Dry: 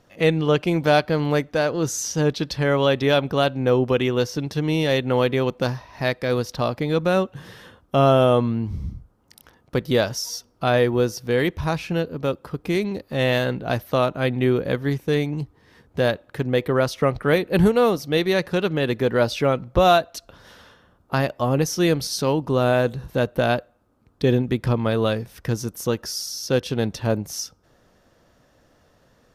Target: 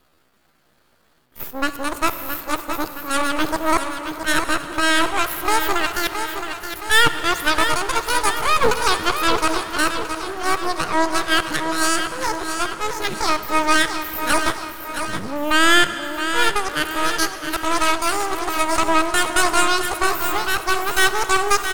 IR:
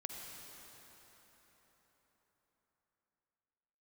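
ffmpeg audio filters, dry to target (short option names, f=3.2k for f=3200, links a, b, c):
-filter_complex "[0:a]areverse,highshelf=f=9.3k:g=9.5,asetrate=83250,aresample=44100,atempo=0.529732,aeval=exprs='0.631*(cos(1*acos(clip(val(0)/0.631,-1,1)))-cos(1*PI/2))+0.158*(cos(6*acos(clip(val(0)/0.631,-1,1)))-cos(6*PI/2))+0.0501*(cos(8*acos(clip(val(0)/0.631,-1,1)))-cos(8*PI/2))':c=same,aecho=1:1:903|1806|2709|3612|4515|5418:0.398|0.211|0.112|0.0593|0.0314|0.0166,aeval=exprs='max(val(0),0)':c=same,asplit=2[a][b];[1:a]atrim=start_sample=2205[c];[b][c]afir=irnorm=-1:irlink=0,volume=-3.5dB[d];[a][d]amix=inputs=2:normalize=0,asetrate=59535,aresample=44100,volume=-2.5dB"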